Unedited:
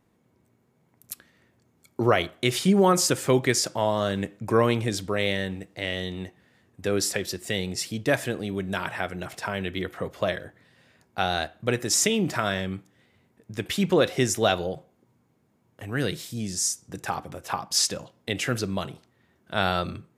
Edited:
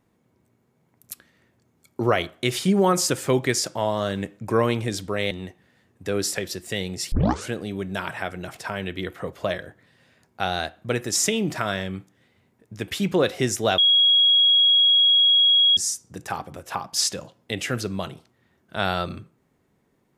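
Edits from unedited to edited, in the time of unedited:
5.31–6.09 cut
7.9 tape start 0.39 s
14.56–16.55 bleep 3310 Hz -13.5 dBFS

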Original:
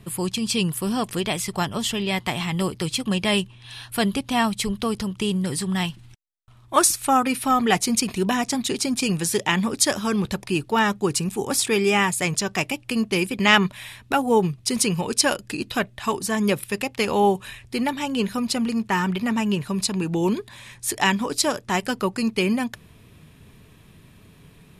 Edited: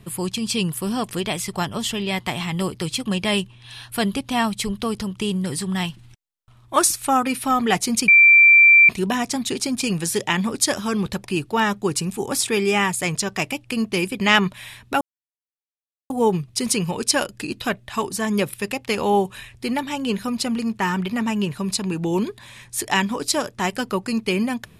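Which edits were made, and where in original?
8.08 add tone 2350 Hz -7.5 dBFS 0.81 s
14.2 insert silence 1.09 s

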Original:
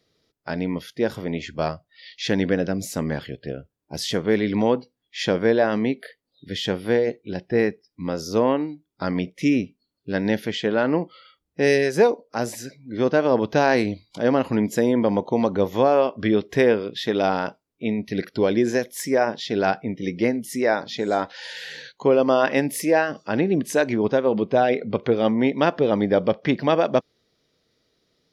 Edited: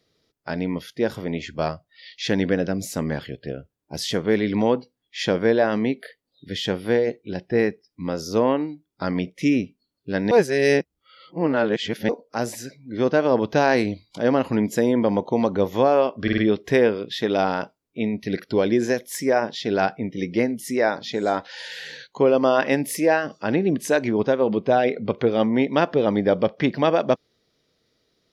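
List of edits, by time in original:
10.31–12.09 reverse
16.23 stutter 0.05 s, 4 plays

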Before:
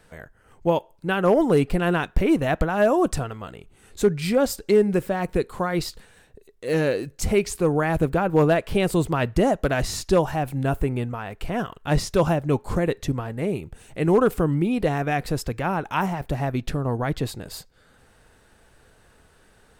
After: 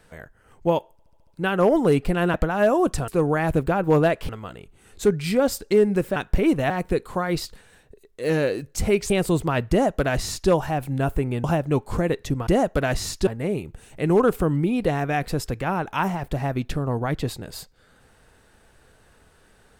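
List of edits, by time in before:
0.92 stutter 0.07 s, 6 plays
1.99–2.53 move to 5.14
7.54–8.75 move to 3.27
9.35–10.15 copy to 13.25
11.09–12.22 cut

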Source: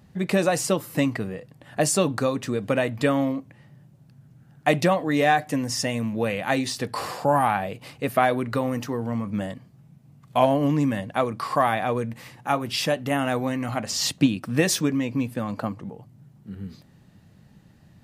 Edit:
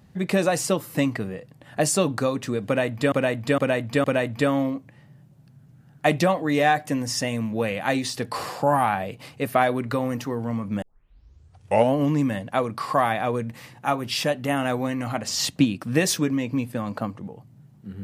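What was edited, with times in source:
2.66–3.12 loop, 4 plays
9.44 tape start 1.12 s

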